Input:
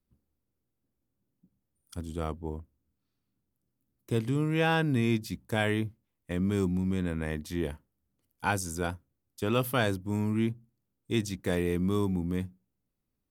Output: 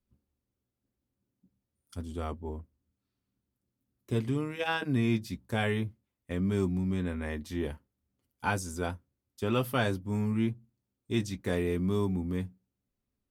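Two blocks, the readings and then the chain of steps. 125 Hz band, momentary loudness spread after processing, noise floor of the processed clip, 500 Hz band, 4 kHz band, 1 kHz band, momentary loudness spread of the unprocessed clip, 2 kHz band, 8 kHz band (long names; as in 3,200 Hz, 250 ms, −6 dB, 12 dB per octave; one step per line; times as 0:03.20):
−1.5 dB, 11 LU, below −85 dBFS, −1.5 dB, −2.0 dB, −2.0 dB, 12 LU, −2.0 dB, −4.0 dB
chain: high-shelf EQ 7,800 Hz −6 dB
notch comb filter 160 Hz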